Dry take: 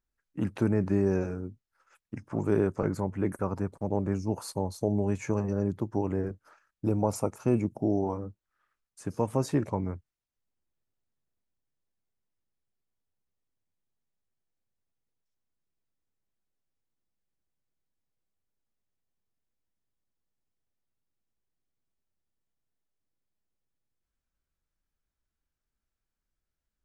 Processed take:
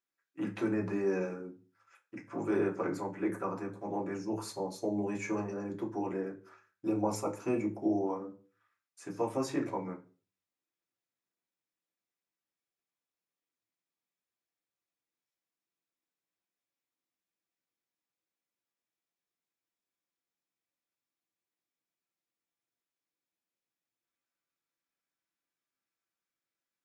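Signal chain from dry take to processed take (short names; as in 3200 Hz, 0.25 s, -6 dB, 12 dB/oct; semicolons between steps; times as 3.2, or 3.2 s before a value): HPF 390 Hz 6 dB/oct; reverb RT60 0.40 s, pre-delay 3 ms, DRR -1.5 dB; gain -6 dB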